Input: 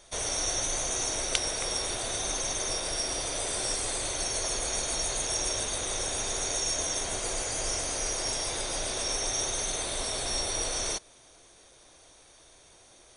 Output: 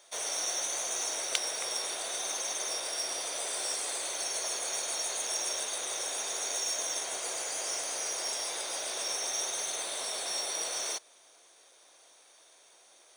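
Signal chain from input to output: high-pass 490 Hz 12 dB/octave; short-mantissa float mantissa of 2-bit; trim -2.5 dB

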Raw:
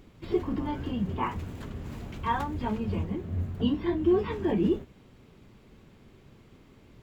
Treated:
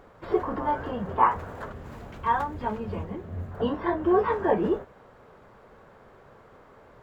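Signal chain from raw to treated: high-order bell 890 Hz +15.5 dB 2.3 oct, from 1.71 s +8.5 dB, from 3.51 s +16 dB; trim -4 dB

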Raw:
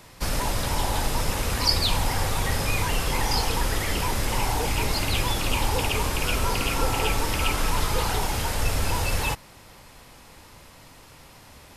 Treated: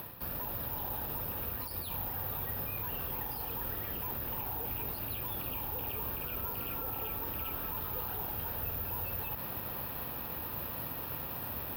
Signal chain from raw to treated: high-pass 63 Hz 12 dB/octave; band-stop 2.1 kHz, Q 6.2; reverse; compression 6:1, threshold -42 dBFS, peak gain reduction 23 dB; reverse; peak limiter -39.5 dBFS, peak gain reduction 11 dB; upward compressor, threshold -54 dBFS; distance through air 280 m; careless resampling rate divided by 3×, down filtered, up zero stuff; trim +8 dB

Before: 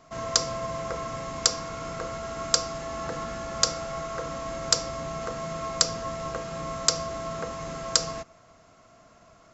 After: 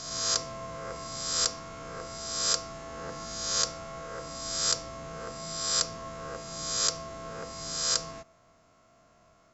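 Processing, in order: reverse spectral sustain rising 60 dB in 1.12 s; trim -9 dB

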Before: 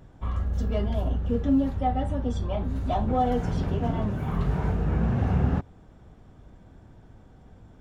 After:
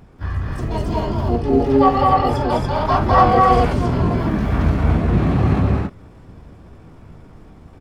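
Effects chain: loudspeakers at several distances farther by 13 m -10 dB, 71 m -1 dB, 95 m -1 dB; time-frequency box 1.71–3.73 s, 430–3500 Hz +6 dB; harmony voices +7 st 0 dB; trim +1 dB

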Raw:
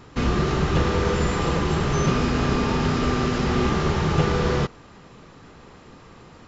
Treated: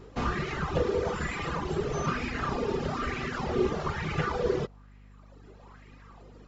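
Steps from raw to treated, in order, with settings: reverb removal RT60 1.6 s; hum 50 Hz, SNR 18 dB; sweeping bell 1.1 Hz 400–2300 Hz +13 dB; trim -8.5 dB

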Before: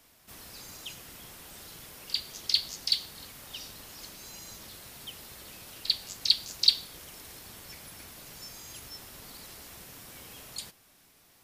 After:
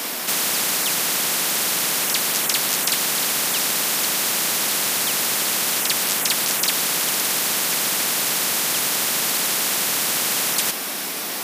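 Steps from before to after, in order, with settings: steep high-pass 190 Hz 36 dB/octave; spectrum-flattening compressor 10:1

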